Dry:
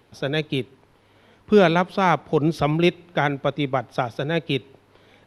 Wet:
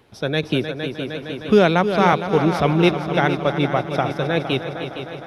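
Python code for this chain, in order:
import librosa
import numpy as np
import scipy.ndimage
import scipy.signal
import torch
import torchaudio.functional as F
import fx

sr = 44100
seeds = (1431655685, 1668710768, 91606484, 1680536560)

y = fx.echo_heads(x, sr, ms=154, heads='second and third', feedback_pct=65, wet_db=-11)
y = fx.band_squash(y, sr, depth_pct=40, at=(0.43, 2.13))
y = y * librosa.db_to_amplitude(2.0)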